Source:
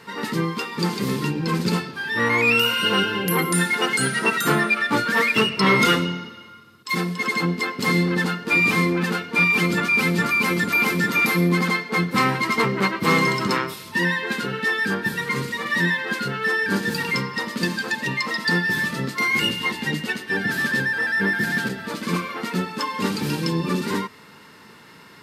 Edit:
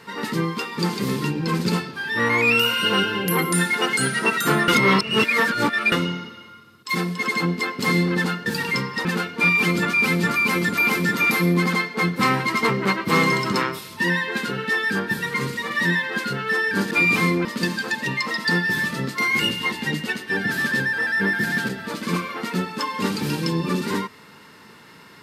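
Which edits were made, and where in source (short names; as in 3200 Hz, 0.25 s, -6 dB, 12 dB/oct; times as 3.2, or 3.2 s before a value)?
4.68–5.92 reverse
8.46–9 swap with 16.86–17.45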